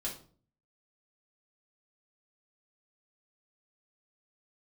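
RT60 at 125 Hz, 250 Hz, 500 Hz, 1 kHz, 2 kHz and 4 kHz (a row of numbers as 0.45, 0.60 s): 0.70, 0.60, 0.50, 0.40, 0.35, 0.35 s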